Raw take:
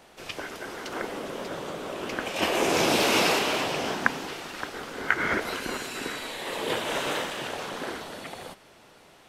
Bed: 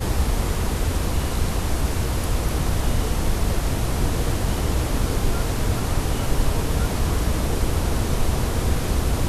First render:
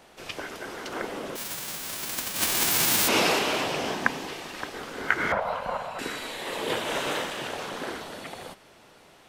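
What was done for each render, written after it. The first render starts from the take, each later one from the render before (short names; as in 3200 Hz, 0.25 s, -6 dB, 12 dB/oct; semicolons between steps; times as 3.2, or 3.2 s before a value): 1.35–3.07 spectral whitening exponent 0.1; 3.85–4.8 notch 1400 Hz, Q 9.4; 5.32–5.99 EQ curve 180 Hz 0 dB, 350 Hz -22 dB, 550 Hz +9 dB, 1000 Hz +9 dB, 1700 Hz -7 dB, 3200 Hz -8 dB, 6100 Hz -17 dB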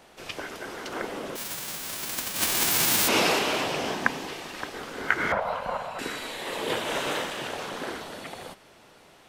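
nothing audible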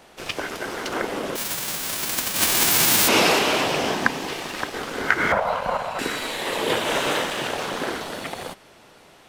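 sample leveller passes 1; in parallel at -1 dB: compressor, threshold -32 dBFS, peak gain reduction 16.5 dB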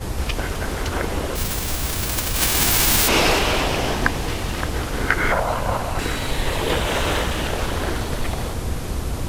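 add bed -4 dB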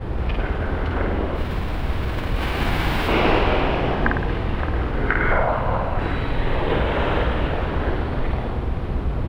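air absorption 470 m; reverse bouncing-ball echo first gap 50 ms, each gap 1.1×, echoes 5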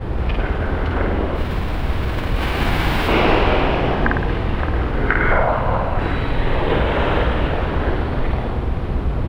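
gain +3 dB; limiter -3 dBFS, peak gain reduction 1.5 dB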